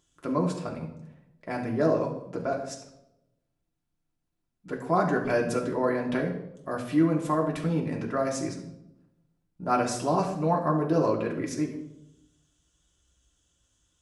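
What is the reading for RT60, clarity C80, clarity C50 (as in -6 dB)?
0.85 s, 10.5 dB, 7.5 dB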